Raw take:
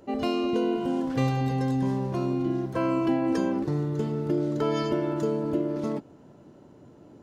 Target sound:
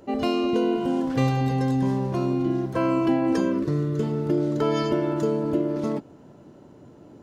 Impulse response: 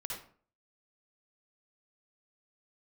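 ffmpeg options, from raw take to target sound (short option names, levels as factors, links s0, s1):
-filter_complex "[0:a]asettb=1/sr,asplit=3[s0][s1][s2];[s0]atrim=end=3.404[s3];[s1]atrim=start=3.4:end=4.03,asetpts=PTS-STARTPTS,afade=t=in:d=0.004:c=qsin,afade=t=out:st=0.626:d=0.004:c=qsin,asuperstop=centerf=810:order=8:qfactor=3.8[s4];[s2]atrim=start=4.026[s5];[s3][s4]acrossfade=d=0.004:c1=hsin:c2=qsin[s6];[s6][s5]acrossfade=d=0.004:c1=qsin:c2=hsin,volume=1.41"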